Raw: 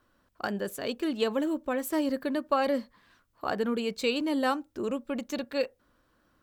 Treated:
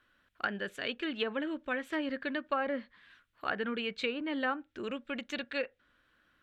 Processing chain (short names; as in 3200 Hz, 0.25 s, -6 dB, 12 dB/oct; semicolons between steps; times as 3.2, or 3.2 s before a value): band shelf 2300 Hz +12 dB; treble ducked by the level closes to 1300 Hz, closed at -19.5 dBFS; gain -7 dB